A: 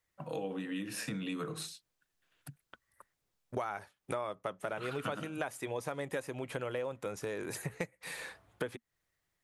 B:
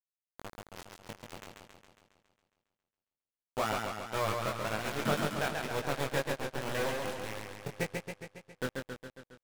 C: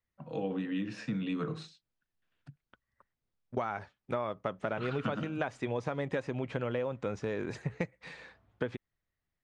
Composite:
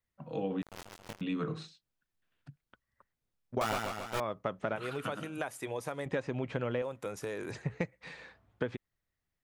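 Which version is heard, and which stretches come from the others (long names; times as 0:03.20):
C
0:00.62–0:01.21: punch in from B
0:03.61–0:04.20: punch in from B
0:04.76–0:06.06: punch in from A
0:06.82–0:07.51: punch in from A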